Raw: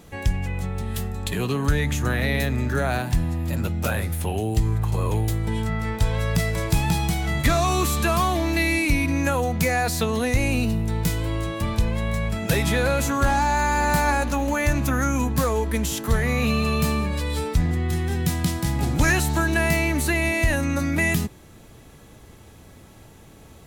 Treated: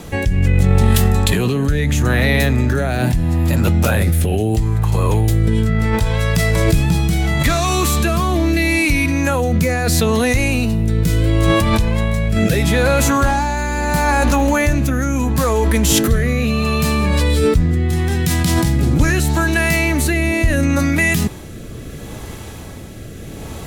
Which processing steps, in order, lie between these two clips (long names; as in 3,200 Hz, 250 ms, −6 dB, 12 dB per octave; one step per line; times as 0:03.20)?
in parallel at +2.5 dB: compressor whose output falls as the input rises −28 dBFS, ratio −0.5
on the sum: rotating-speaker cabinet horn 0.75 Hz
level +5.5 dB